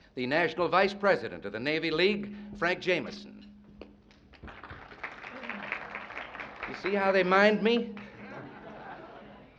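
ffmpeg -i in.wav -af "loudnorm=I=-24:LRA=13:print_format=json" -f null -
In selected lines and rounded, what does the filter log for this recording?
"input_i" : "-27.7",
"input_tp" : "-9.0",
"input_lra" : "9.3",
"input_thresh" : "-40.2",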